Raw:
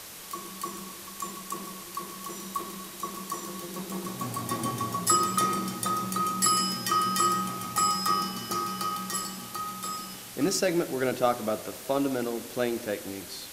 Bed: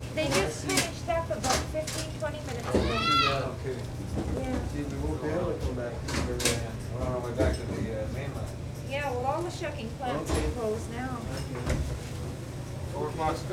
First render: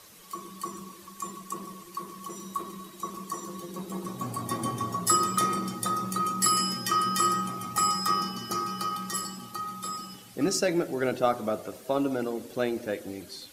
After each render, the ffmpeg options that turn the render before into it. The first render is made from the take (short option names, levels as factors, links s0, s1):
-af "afftdn=nr=11:nf=-43"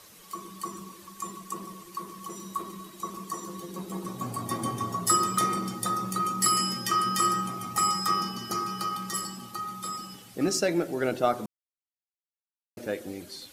-filter_complex "[0:a]asplit=3[s0][s1][s2];[s0]atrim=end=11.46,asetpts=PTS-STARTPTS,afade=t=out:st=11.456:d=0.004:c=hsin[s3];[s1]atrim=start=11.46:end=12.77,asetpts=PTS-STARTPTS,volume=0[s4];[s2]atrim=start=12.77,asetpts=PTS-STARTPTS,afade=t=in:d=0.004:c=hsin[s5];[s3][s4][s5]concat=n=3:v=0:a=1"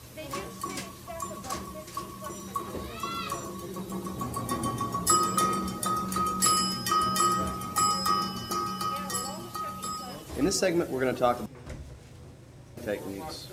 -filter_complex "[1:a]volume=0.251[s0];[0:a][s0]amix=inputs=2:normalize=0"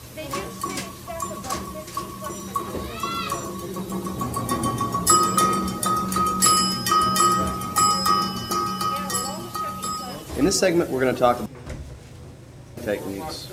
-af "volume=2.11"